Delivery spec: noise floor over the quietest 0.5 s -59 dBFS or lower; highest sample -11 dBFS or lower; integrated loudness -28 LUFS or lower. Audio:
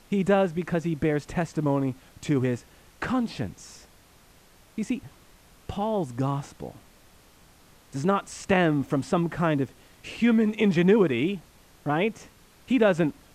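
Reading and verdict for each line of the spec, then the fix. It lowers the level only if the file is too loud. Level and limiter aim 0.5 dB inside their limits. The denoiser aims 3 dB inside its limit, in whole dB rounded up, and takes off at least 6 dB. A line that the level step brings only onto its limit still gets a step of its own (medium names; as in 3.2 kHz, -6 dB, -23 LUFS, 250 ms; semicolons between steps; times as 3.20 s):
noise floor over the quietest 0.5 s -56 dBFS: fail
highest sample -7.5 dBFS: fail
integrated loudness -26.0 LUFS: fail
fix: noise reduction 6 dB, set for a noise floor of -56 dBFS; trim -2.5 dB; peak limiter -11.5 dBFS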